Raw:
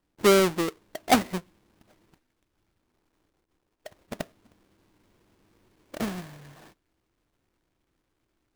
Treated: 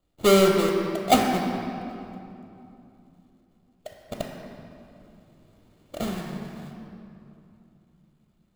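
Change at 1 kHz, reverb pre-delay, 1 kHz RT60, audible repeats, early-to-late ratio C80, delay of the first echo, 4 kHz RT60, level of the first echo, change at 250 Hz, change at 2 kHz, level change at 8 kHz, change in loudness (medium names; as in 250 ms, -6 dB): +3.0 dB, 3 ms, 2.8 s, no echo, 3.0 dB, no echo, 1.8 s, no echo, +3.5 dB, 0.0 dB, +1.0 dB, +1.5 dB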